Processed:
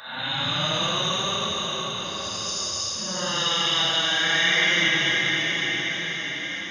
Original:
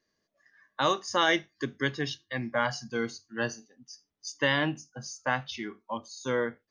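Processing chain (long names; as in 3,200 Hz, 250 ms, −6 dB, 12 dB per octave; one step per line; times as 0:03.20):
peak hold with a decay on every bin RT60 1.14 s
extreme stretch with random phases 8.4×, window 0.05 s, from 0:00.78
flat-topped bell 650 Hz −13 dB 2.7 octaves
level +4.5 dB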